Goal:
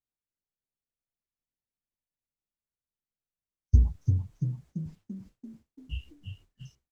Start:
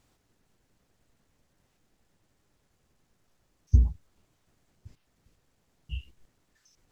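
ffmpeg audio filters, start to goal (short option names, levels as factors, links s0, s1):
-filter_complex "[0:a]asplit=8[s0][s1][s2][s3][s4][s5][s6][s7];[s1]adelay=338,afreqshift=33,volume=0.501[s8];[s2]adelay=676,afreqshift=66,volume=0.275[s9];[s3]adelay=1014,afreqshift=99,volume=0.151[s10];[s4]adelay=1352,afreqshift=132,volume=0.0832[s11];[s5]adelay=1690,afreqshift=165,volume=0.0457[s12];[s6]adelay=2028,afreqshift=198,volume=0.0251[s13];[s7]adelay=2366,afreqshift=231,volume=0.0138[s14];[s0][s8][s9][s10][s11][s12][s13][s14]amix=inputs=8:normalize=0,agate=range=0.0224:threshold=0.00447:ratio=3:detection=peak"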